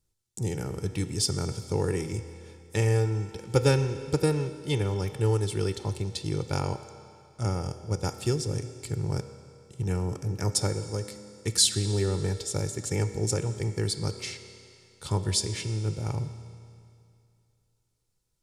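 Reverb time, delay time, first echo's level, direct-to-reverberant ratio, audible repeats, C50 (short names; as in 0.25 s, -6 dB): 2.4 s, none, none, 9.0 dB, none, 10.0 dB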